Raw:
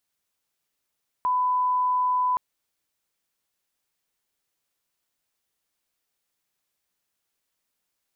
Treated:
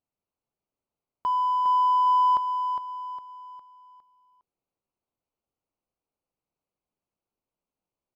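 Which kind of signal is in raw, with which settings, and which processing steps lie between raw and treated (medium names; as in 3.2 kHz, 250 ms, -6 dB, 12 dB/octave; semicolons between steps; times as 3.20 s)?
line-up tone -20 dBFS 1.12 s
local Wiener filter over 25 samples; on a send: feedback delay 408 ms, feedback 40%, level -7 dB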